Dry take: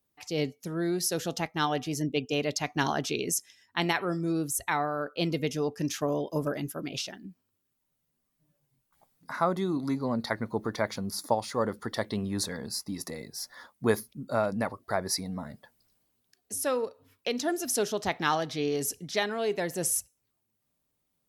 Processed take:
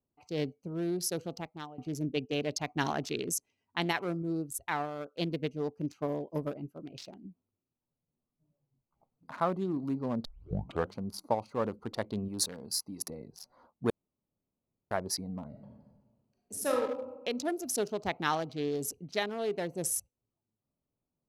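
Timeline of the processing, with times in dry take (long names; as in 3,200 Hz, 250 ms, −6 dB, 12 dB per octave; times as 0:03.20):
0:01.12–0:01.78: fade out, to −19.5 dB
0:04.22–0:07.02: expander for the loud parts, over −39 dBFS
0:10.25: tape start 0.72 s
0:12.28–0:13.10: spectral tilt +2 dB per octave
0:13.90–0:14.91: fill with room tone
0:15.48–0:16.78: thrown reverb, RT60 1.3 s, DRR −1.5 dB
whole clip: adaptive Wiener filter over 25 samples; level −3 dB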